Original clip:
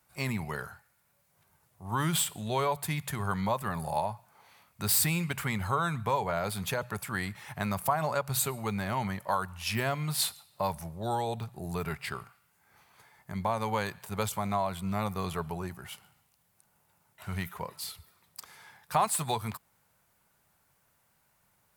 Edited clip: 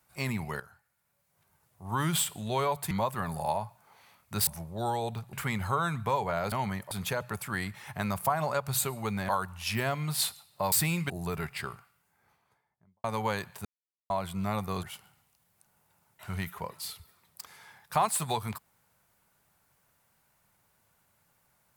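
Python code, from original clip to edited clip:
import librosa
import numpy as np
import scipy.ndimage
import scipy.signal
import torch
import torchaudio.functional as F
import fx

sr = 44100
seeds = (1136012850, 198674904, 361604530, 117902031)

y = fx.studio_fade_out(x, sr, start_s=12.15, length_s=1.37)
y = fx.edit(y, sr, fx.fade_in_from(start_s=0.6, length_s=1.26, floor_db=-12.5),
    fx.cut(start_s=2.91, length_s=0.48),
    fx.swap(start_s=4.95, length_s=0.38, other_s=10.72, other_length_s=0.86),
    fx.move(start_s=8.9, length_s=0.39, to_s=6.52),
    fx.silence(start_s=14.13, length_s=0.45),
    fx.cut(start_s=15.31, length_s=0.51), tone=tone)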